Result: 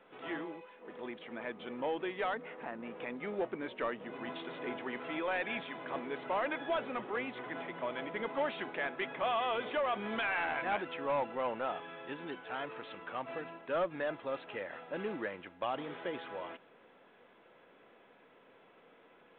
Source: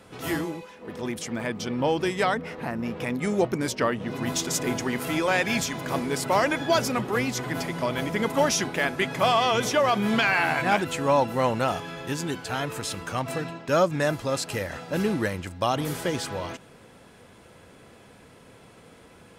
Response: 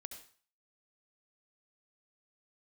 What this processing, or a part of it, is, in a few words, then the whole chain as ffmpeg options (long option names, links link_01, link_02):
telephone: -af "highpass=330,lowpass=3100,asoftclip=type=tanh:threshold=-17dB,volume=-8.5dB" -ar 8000 -c:a pcm_mulaw